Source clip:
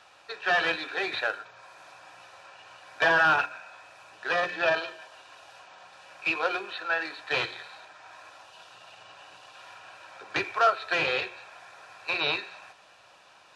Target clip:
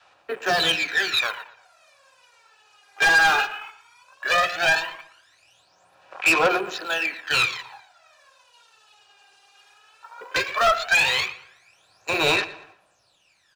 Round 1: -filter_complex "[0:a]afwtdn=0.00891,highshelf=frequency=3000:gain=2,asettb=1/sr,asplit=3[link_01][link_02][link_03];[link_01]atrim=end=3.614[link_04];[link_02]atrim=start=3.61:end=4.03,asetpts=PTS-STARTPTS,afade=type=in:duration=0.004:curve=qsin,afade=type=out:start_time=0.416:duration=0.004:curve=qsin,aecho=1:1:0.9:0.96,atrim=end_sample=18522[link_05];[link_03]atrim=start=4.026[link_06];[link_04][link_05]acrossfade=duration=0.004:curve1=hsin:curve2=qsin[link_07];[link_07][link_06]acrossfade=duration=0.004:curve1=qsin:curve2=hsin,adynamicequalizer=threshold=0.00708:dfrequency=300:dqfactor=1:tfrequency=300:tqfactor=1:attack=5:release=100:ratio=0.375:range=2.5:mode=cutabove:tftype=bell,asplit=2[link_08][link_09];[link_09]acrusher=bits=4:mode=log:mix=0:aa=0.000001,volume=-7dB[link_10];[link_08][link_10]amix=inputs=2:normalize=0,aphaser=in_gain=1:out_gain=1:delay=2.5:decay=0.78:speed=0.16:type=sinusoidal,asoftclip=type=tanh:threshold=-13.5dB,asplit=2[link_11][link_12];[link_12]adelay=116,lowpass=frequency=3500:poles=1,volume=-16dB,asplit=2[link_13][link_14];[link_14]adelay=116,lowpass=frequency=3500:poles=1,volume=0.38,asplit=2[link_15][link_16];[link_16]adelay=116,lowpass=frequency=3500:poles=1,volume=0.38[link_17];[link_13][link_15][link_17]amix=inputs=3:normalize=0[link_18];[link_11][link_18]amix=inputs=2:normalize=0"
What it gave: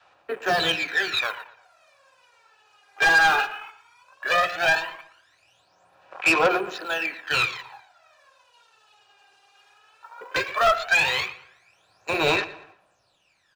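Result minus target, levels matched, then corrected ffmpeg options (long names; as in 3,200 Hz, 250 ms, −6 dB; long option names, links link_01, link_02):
8,000 Hz band −3.0 dB
-filter_complex "[0:a]afwtdn=0.00891,highshelf=frequency=3000:gain=9,asettb=1/sr,asplit=3[link_01][link_02][link_03];[link_01]atrim=end=3.614[link_04];[link_02]atrim=start=3.61:end=4.03,asetpts=PTS-STARTPTS,afade=type=in:duration=0.004:curve=qsin,afade=type=out:start_time=0.416:duration=0.004:curve=qsin,aecho=1:1:0.9:0.96,atrim=end_sample=18522[link_05];[link_03]atrim=start=4.026[link_06];[link_04][link_05]acrossfade=duration=0.004:curve1=hsin:curve2=qsin[link_07];[link_07][link_06]acrossfade=duration=0.004:curve1=qsin:curve2=hsin,adynamicequalizer=threshold=0.00708:dfrequency=300:dqfactor=1:tfrequency=300:tqfactor=1:attack=5:release=100:ratio=0.375:range=2.5:mode=cutabove:tftype=bell,asplit=2[link_08][link_09];[link_09]acrusher=bits=4:mode=log:mix=0:aa=0.000001,volume=-7dB[link_10];[link_08][link_10]amix=inputs=2:normalize=0,aphaser=in_gain=1:out_gain=1:delay=2.5:decay=0.78:speed=0.16:type=sinusoidal,asoftclip=type=tanh:threshold=-13.5dB,asplit=2[link_11][link_12];[link_12]adelay=116,lowpass=frequency=3500:poles=1,volume=-16dB,asplit=2[link_13][link_14];[link_14]adelay=116,lowpass=frequency=3500:poles=1,volume=0.38,asplit=2[link_15][link_16];[link_16]adelay=116,lowpass=frequency=3500:poles=1,volume=0.38[link_17];[link_13][link_15][link_17]amix=inputs=3:normalize=0[link_18];[link_11][link_18]amix=inputs=2:normalize=0"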